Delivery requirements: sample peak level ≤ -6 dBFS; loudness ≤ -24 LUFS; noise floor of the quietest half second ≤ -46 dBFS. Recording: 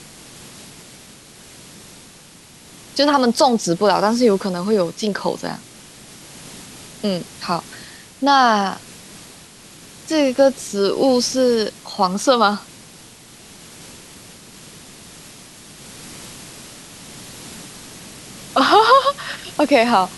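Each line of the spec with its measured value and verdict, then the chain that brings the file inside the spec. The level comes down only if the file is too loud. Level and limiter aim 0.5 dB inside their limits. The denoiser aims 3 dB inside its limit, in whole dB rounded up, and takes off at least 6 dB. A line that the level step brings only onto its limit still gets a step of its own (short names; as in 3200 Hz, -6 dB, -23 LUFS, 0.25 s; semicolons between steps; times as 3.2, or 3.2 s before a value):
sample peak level -2.0 dBFS: fail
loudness -17.5 LUFS: fail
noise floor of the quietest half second -44 dBFS: fail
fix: gain -7 dB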